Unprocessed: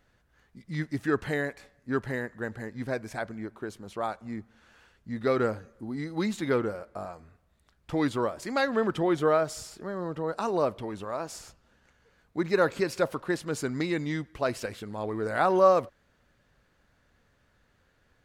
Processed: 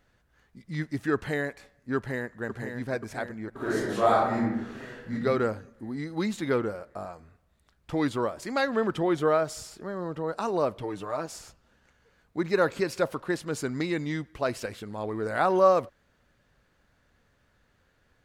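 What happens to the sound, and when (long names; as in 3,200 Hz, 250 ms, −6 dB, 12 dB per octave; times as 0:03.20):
0:01.96–0:02.43: delay throw 530 ms, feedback 65%, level −6.5 dB
0:03.50–0:05.12: thrown reverb, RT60 0.96 s, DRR −10.5 dB
0:10.80–0:11.26: comb filter 6.6 ms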